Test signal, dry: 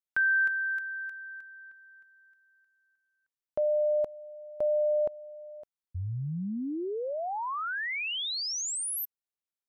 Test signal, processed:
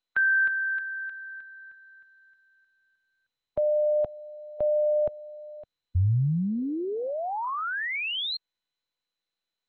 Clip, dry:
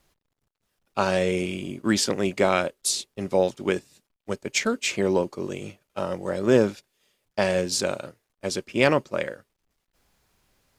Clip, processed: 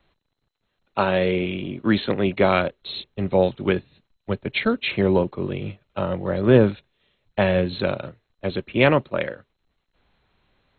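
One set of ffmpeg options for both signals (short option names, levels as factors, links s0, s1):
-filter_complex "[0:a]acrossover=split=150|2000[s0][s1][s2];[s0]dynaudnorm=f=220:g=21:m=3.16[s3];[s3][s1][s2]amix=inputs=3:normalize=0,volume=1.33" -ar 16000 -c:a mp2 -b:a 32k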